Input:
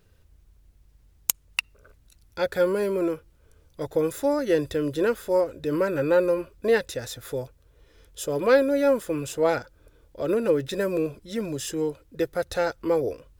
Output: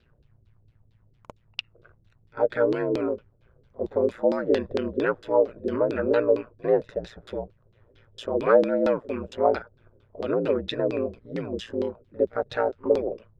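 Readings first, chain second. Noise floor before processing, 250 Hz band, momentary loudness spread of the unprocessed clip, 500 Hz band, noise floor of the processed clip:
−60 dBFS, −1.5 dB, 11 LU, 0.0 dB, −63 dBFS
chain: ring modulation 58 Hz
echo ahead of the sound 50 ms −22 dB
auto-filter low-pass saw down 4.4 Hz 320–4,200 Hz

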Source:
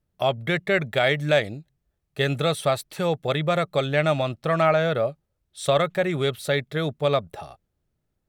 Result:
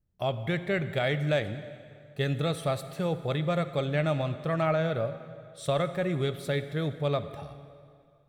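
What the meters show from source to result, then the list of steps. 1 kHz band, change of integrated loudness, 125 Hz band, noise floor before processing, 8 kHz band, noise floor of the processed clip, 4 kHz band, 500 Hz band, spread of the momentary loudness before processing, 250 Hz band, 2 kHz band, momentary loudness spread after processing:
−8.0 dB, −6.0 dB, −2.0 dB, −77 dBFS, −8.5 dB, −60 dBFS, −8.5 dB, −6.5 dB, 8 LU, −3.0 dB, −8.5 dB, 14 LU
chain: low-shelf EQ 270 Hz +9.5 dB
dense smooth reverb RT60 2.3 s, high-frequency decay 0.85×, DRR 10.5 dB
level −9 dB

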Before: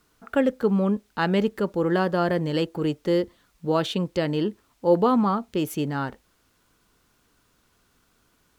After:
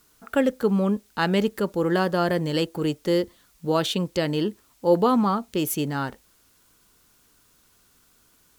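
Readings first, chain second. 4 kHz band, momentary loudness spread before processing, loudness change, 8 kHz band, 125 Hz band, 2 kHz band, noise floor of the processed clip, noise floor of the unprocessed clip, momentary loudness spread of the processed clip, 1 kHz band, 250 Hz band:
+3.5 dB, 7 LU, +0.5 dB, +8.5 dB, 0.0 dB, +1.0 dB, −61 dBFS, −66 dBFS, 7 LU, +0.5 dB, 0.0 dB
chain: high-shelf EQ 4,900 Hz +11 dB

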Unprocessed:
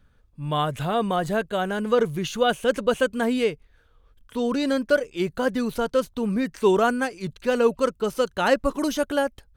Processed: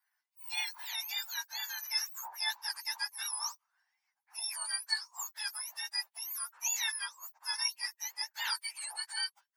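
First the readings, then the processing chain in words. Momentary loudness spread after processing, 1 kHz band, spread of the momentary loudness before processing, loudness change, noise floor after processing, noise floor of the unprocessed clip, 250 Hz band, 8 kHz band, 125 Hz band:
6 LU, −19.0 dB, 6 LU, −11.5 dB, below −85 dBFS, −60 dBFS, below −40 dB, +4.5 dB, below −40 dB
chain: frequency axis turned over on the octave scale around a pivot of 1,600 Hz
elliptic high-pass filter 900 Hz, stop band 70 dB
level −8 dB

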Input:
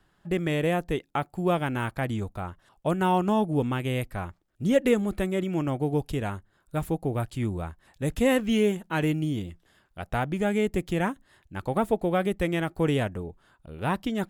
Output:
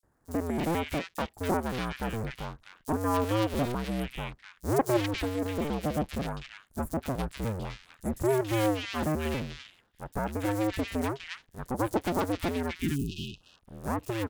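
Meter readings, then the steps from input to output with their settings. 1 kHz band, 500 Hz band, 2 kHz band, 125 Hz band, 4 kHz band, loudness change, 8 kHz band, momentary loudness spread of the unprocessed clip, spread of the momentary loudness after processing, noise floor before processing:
−2.5 dB, −4.5 dB, −4.0 dB, −4.0 dB, −1.0 dB, −4.0 dB, +1.5 dB, 12 LU, 13 LU, −67 dBFS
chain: sub-harmonics by changed cycles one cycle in 2, inverted
time-frequency box erased 0:12.68–0:13.32, 410–2,500 Hz
three-band delay without the direct sound highs, lows, mids 30/280 ms, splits 1,700/5,700 Hz
level −3.5 dB

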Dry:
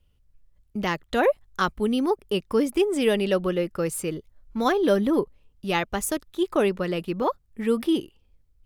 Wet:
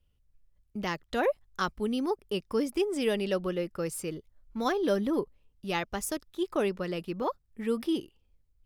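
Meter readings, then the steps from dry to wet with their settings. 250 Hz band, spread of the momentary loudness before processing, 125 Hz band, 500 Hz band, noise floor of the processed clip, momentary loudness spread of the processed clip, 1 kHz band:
−6.5 dB, 8 LU, −6.5 dB, −6.5 dB, −70 dBFS, 8 LU, −6.5 dB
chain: dynamic equaliser 5,200 Hz, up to +7 dB, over −57 dBFS, Q 4
level −6.5 dB

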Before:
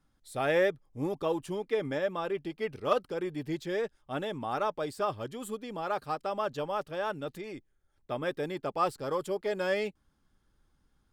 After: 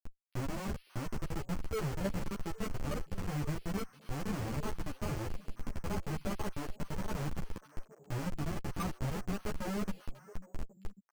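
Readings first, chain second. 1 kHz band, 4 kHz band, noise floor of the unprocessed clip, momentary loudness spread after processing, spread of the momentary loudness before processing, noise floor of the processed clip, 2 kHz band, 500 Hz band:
−10.0 dB, −5.5 dB, −73 dBFS, 11 LU, 8 LU, −63 dBFS, −8.5 dB, −12.5 dB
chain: RIAA equalisation playback
gate on every frequency bin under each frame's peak −20 dB strong
parametric band 550 Hz −15 dB 1.7 octaves
comb filter 6.8 ms, depth 57%
in parallel at −1 dB: upward compression, threshold −35 dBFS
on the sum: brickwall limiter −23.5 dBFS, peak gain reduction 11.5 dB
output level in coarse steps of 10 dB
comparator with hysteresis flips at −37 dBFS
on a send: echo through a band-pass that steps 272 ms, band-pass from 3,500 Hz, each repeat −1.4 octaves, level −11 dB
on the sum: bad sample-rate conversion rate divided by 6×, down filtered, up hold
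string-ensemble chorus
level +4.5 dB

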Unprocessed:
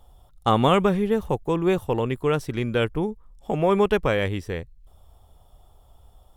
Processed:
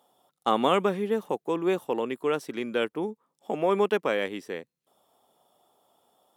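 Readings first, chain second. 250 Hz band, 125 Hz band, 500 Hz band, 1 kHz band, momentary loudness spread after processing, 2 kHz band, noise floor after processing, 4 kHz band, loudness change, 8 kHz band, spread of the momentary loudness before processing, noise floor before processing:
−6.0 dB, −15.0 dB, −3.5 dB, −3.5 dB, 12 LU, −3.5 dB, −84 dBFS, −3.5 dB, −4.5 dB, can't be measured, 11 LU, −55 dBFS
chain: high-pass filter 220 Hz 24 dB per octave
level −3.5 dB

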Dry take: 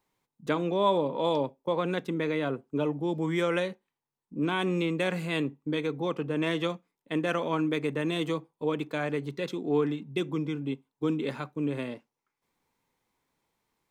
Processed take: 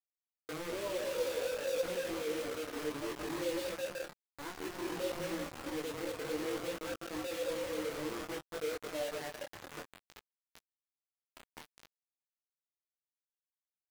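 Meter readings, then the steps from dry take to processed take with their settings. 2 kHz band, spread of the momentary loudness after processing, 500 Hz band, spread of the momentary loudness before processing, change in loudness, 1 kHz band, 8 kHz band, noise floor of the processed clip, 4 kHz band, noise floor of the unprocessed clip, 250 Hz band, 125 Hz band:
−8.5 dB, 12 LU, −7.5 dB, 7 LU, −8.5 dB, −12.0 dB, +6.5 dB, below −85 dBFS, −6.0 dB, below −85 dBFS, −13.5 dB, −18.5 dB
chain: expanding power law on the bin magnitudes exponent 2
in parallel at −9.5 dB: fuzz pedal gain 39 dB, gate −48 dBFS
on the sum: high-pass filter 110 Hz 24 dB per octave
pitch vibrato 6.5 Hz 7.3 cents
downward compressor 8 to 1, threshold −29 dBFS, peak gain reduction 13 dB
on a send: bouncing-ball delay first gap 210 ms, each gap 0.8×, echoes 5
on the sum: harmonic and percussive parts rebalanced percussive −12 dB
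band-pass filter sweep 490 Hz → 1,000 Hz, 0:07.77–0:10.90
bit-depth reduction 6 bits, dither none
micro pitch shift up and down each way 20 cents

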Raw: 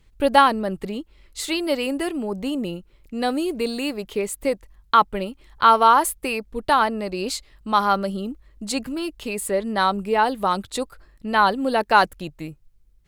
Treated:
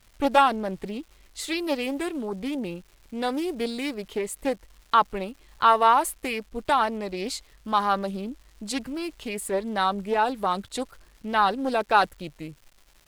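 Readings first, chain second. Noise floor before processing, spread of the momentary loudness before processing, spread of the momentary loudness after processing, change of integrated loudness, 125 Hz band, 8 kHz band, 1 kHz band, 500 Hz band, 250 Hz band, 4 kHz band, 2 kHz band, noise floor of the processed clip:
−56 dBFS, 16 LU, 17 LU, −4.0 dB, can't be measured, −5.0 dB, −4.0 dB, −4.0 dB, −4.0 dB, −4.5 dB, −4.5 dB, −58 dBFS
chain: surface crackle 390 per second −40 dBFS
highs frequency-modulated by the lows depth 0.25 ms
level −4 dB

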